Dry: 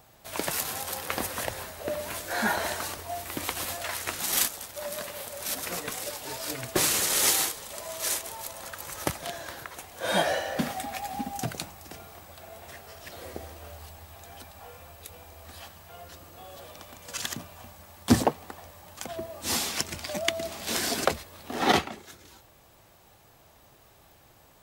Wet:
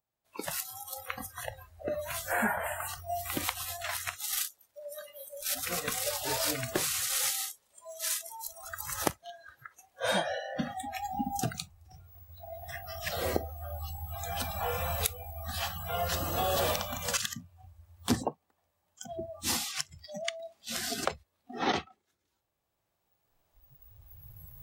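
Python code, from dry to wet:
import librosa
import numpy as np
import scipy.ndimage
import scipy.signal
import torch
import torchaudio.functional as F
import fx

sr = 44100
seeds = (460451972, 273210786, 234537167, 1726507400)

y = fx.recorder_agc(x, sr, target_db=-9.5, rise_db_per_s=8.3, max_gain_db=30)
y = fx.band_shelf(y, sr, hz=4700.0, db=-14.5, octaves=1.0, at=(2.3, 2.87), fade=0.02)
y = fx.noise_reduce_blind(y, sr, reduce_db=24)
y = y * 10.0 ** (-9.0 / 20.0)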